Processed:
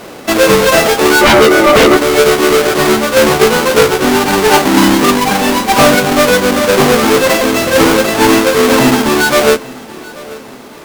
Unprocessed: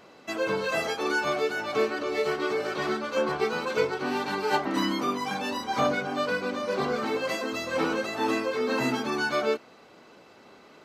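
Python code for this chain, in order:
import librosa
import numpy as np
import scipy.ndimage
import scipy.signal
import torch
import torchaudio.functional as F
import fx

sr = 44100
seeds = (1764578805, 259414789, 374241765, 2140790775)

p1 = fx.halfwave_hold(x, sr)
p2 = fx.rider(p1, sr, range_db=4, speed_s=2.0)
p3 = fx.small_body(p2, sr, hz=(340.0, 540.0, 1200.0, 2000.0), ring_ms=30, db=15, at=(1.21, 1.97))
p4 = fx.fold_sine(p3, sr, drive_db=11, ceiling_db=-2.5)
y = p4 + fx.echo_feedback(p4, sr, ms=834, feedback_pct=45, wet_db=-21.0, dry=0)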